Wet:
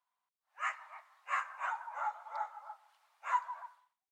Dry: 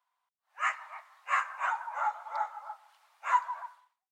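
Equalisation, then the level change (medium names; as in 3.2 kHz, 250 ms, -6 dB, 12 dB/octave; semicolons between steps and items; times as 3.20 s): bass shelf 470 Hz +3 dB; -6.5 dB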